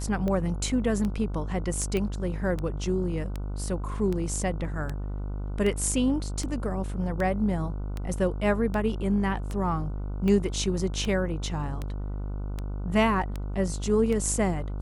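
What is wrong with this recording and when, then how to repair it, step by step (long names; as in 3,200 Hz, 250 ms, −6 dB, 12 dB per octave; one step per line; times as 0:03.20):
mains buzz 50 Hz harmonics 30 −32 dBFS
scratch tick 78 rpm −19 dBFS
0:01.97: click −16 dBFS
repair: click removal
hum removal 50 Hz, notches 30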